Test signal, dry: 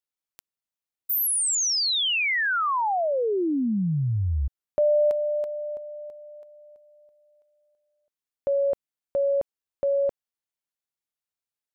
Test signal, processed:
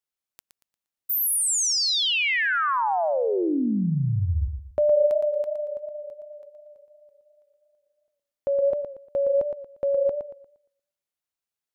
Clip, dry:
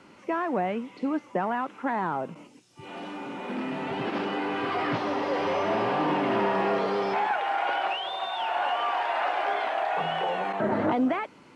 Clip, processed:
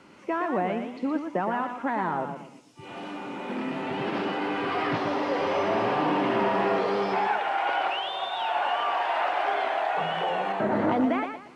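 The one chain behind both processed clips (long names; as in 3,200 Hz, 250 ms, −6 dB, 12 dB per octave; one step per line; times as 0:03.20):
feedback echo with a swinging delay time 117 ms, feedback 31%, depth 90 cents, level −7 dB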